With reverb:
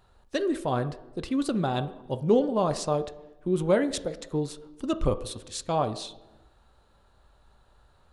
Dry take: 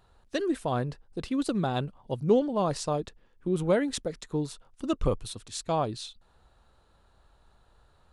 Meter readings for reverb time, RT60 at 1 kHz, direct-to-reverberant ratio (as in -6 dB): 1.1 s, 0.95 s, 10.0 dB